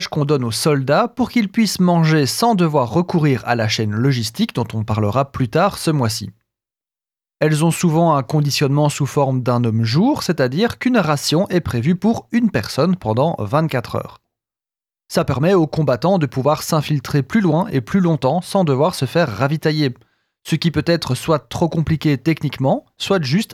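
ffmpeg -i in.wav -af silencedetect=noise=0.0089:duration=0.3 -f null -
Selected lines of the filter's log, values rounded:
silence_start: 6.31
silence_end: 7.41 | silence_duration: 1.10
silence_start: 14.16
silence_end: 15.10 | silence_duration: 0.94
silence_start: 20.02
silence_end: 20.45 | silence_duration: 0.44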